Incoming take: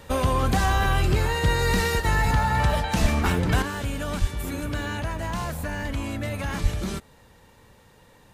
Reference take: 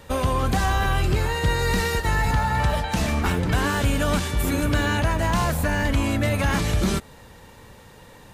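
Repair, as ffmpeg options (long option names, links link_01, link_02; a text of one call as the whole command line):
ffmpeg -i in.wav -filter_complex "[0:a]asplit=3[link_01][link_02][link_03];[link_01]afade=type=out:start_time=3.01:duration=0.02[link_04];[link_02]highpass=frequency=140:width=0.5412,highpass=frequency=140:width=1.3066,afade=type=in:start_time=3.01:duration=0.02,afade=type=out:start_time=3.13:duration=0.02[link_05];[link_03]afade=type=in:start_time=3.13:duration=0.02[link_06];[link_04][link_05][link_06]amix=inputs=3:normalize=0,asplit=3[link_07][link_08][link_09];[link_07]afade=type=out:start_time=4.2:duration=0.02[link_10];[link_08]highpass=frequency=140:width=0.5412,highpass=frequency=140:width=1.3066,afade=type=in:start_time=4.2:duration=0.02,afade=type=out:start_time=4.32:duration=0.02[link_11];[link_09]afade=type=in:start_time=4.32:duration=0.02[link_12];[link_10][link_11][link_12]amix=inputs=3:normalize=0,asplit=3[link_13][link_14][link_15];[link_13]afade=type=out:start_time=6.62:duration=0.02[link_16];[link_14]highpass=frequency=140:width=0.5412,highpass=frequency=140:width=1.3066,afade=type=in:start_time=6.62:duration=0.02,afade=type=out:start_time=6.74:duration=0.02[link_17];[link_15]afade=type=in:start_time=6.74:duration=0.02[link_18];[link_16][link_17][link_18]amix=inputs=3:normalize=0,asetnsamples=nb_out_samples=441:pad=0,asendcmd='3.62 volume volume 7.5dB',volume=0dB" out.wav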